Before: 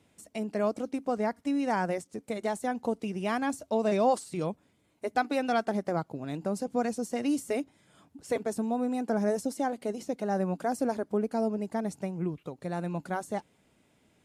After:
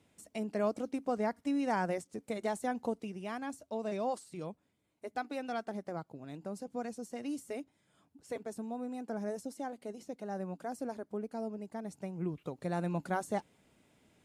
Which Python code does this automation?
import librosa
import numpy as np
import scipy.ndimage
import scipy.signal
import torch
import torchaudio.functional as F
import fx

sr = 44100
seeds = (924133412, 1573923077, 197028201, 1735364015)

y = fx.gain(x, sr, db=fx.line((2.82, -3.5), (3.23, -10.0), (11.83, -10.0), (12.49, -1.0)))